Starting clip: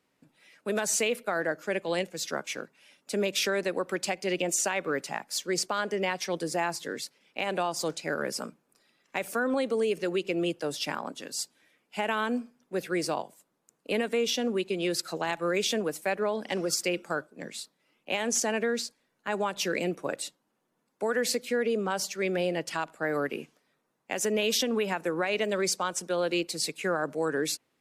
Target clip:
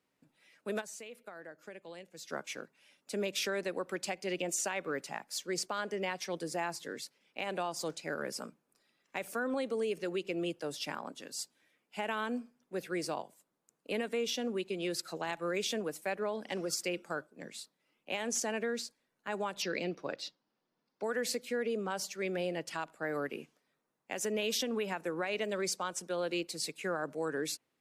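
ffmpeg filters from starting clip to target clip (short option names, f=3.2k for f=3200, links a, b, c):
-filter_complex "[0:a]asplit=3[a][b][c];[a]afade=t=out:st=0.8:d=0.02[d];[b]acompressor=threshold=-39dB:ratio=6,afade=t=in:st=0.8:d=0.02,afade=t=out:st=2.29:d=0.02[e];[c]afade=t=in:st=2.29:d=0.02[f];[d][e][f]amix=inputs=3:normalize=0,asettb=1/sr,asplit=3[g][h][i];[g]atrim=end=19.624[j];[h]atrim=start=19.62:end=21.04,asetpts=PTS-STARTPTS,afade=t=in:d=0.004:c=qsin,afade=t=out:st=1.416:d=0.004:c=qsin,highshelf=f=6.6k:t=q:w=3:g=-10.5[k];[i]atrim=start=21.036[l];[j][k]acrossfade=d=0.004:c1=hsin:c2=qsin[m];[m][l]acrossfade=d=0.004:c1=qsin:c2=hsin,volume=-6.5dB"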